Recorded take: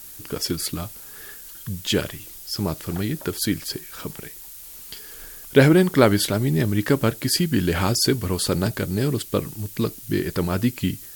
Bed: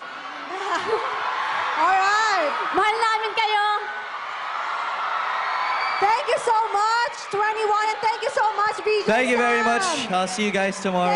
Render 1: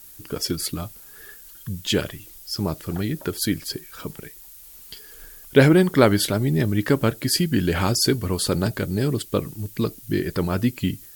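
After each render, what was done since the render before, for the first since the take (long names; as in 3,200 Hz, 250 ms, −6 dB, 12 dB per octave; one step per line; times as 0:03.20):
broadband denoise 6 dB, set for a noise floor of −41 dBFS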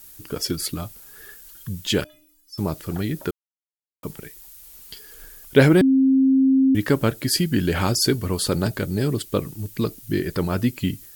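0:02.04–0:02.58: stiff-string resonator 300 Hz, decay 0.4 s, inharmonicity 0.008
0:03.31–0:04.03: silence
0:05.81–0:06.75: beep over 266 Hz −13 dBFS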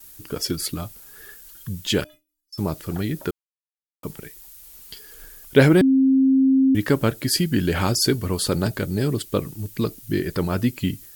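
noise gate with hold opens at −39 dBFS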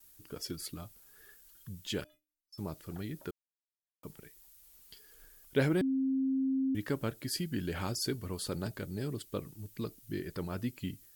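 level −14.5 dB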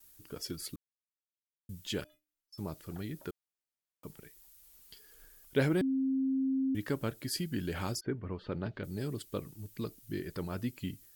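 0:00.76–0:01.69: silence
0:07.99–0:08.83: low-pass filter 1,800 Hz → 4,000 Hz 24 dB per octave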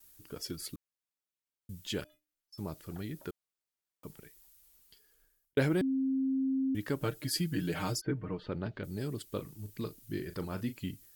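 0:04.16–0:05.57: fade out
0:07.01–0:08.46: comb filter 6.5 ms, depth 82%
0:09.28–0:10.77: double-tracking delay 38 ms −11 dB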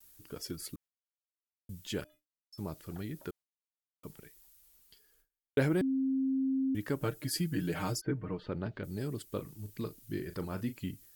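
noise gate with hold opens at −57 dBFS
dynamic equaliser 3,700 Hz, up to −4 dB, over −55 dBFS, Q 1.2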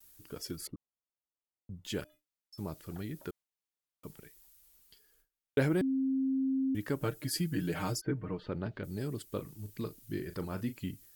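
0:00.67–0:01.85: Savitzky-Golay smoothing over 65 samples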